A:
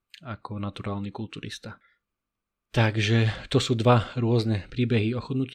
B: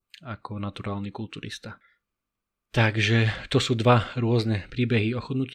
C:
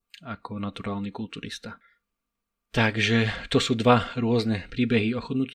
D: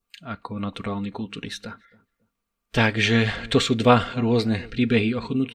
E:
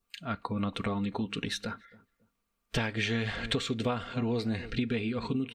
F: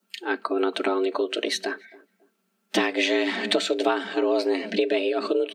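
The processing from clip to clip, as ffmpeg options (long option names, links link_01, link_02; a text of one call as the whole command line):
ffmpeg -i in.wav -af "adynamicequalizer=threshold=0.00794:dfrequency=2000:dqfactor=1.2:tfrequency=2000:tqfactor=1.2:attack=5:release=100:ratio=0.375:range=2.5:mode=boostabove:tftype=bell" out.wav
ffmpeg -i in.wav -af "aecho=1:1:4.3:0.43" out.wav
ffmpeg -i in.wav -filter_complex "[0:a]asplit=2[link_01][link_02];[link_02]adelay=278,lowpass=frequency=830:poles=1,volume=-20.5dB,asplit=2[link_03][link_04];[link_04]adelay=278,lowpass=frequency=830:poles=1,volume=0.29[link_05];[link_01][link_03][link_05]amix=inputs=3:normalize=0,volume=2.5dB" out.wav
ffmpeg -i in.wav -af "acompressor=threshold=-27dB:ratio=12" out.wav
ffmpeg -i in.wav -af "afreqshift=180,volume=7.5dB" out.wav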